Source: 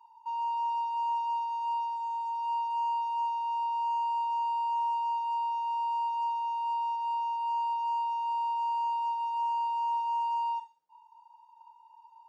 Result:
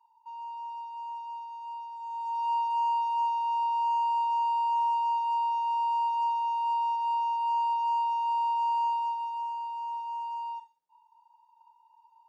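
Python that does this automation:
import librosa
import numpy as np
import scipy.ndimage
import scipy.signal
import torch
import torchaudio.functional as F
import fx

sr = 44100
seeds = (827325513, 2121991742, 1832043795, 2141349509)

y = fx.gain(x, sr, db=fx.line((1.89, -8.0), (2.39, 3.0), (8.85, 3.0), (9.57, -5.0)))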